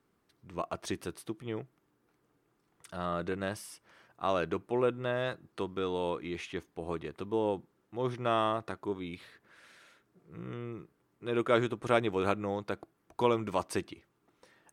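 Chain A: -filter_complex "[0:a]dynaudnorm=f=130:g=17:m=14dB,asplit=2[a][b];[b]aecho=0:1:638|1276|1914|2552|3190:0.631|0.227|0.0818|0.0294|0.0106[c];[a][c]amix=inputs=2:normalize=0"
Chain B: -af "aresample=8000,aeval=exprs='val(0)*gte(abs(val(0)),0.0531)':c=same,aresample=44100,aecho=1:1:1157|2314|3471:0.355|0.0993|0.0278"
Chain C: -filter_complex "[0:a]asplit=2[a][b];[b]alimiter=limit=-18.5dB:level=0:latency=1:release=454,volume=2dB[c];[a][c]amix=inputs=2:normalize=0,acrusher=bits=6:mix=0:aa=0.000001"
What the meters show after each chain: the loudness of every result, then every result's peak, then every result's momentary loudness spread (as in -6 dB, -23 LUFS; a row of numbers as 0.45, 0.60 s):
-21.5, -36.0, -28.0 LUFS; -1.5, -11.0, -7.5 dBFS; 14, 22, 14 LU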